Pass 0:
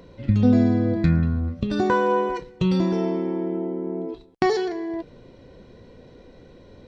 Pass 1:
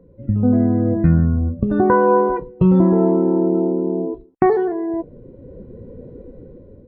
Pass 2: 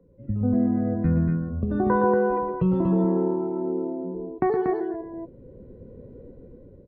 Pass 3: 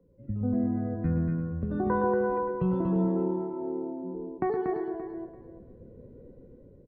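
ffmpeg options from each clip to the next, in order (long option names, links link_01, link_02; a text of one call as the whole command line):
ffmpeg -i in.wav -af "lowpass=1300,afftdn=noise_reduction=15:noise_floor=-42,dynaudnorm=framelen=310:gausssize=5:maxgain=12dB" out.wav
ffmpeg -i in.wav -filter_complex "[0:a]aecho=1:1:116.6|236.2:0.398|0.631,acrossover=split=120|650[link_01][link_02][link_03];[link_01]volume=15.5dB,asoftclip=hard,volume=-15.5dB[link_04];[link_04][link_02][link_03]amix=inputs=3:normalize=0,volume=-8.5dB" out.wav
ffmpeg -i in.wav -af "aecho=1:1:339|678|1017:0.266|0.0559|0.0117,volume=-5.5dB" out.wav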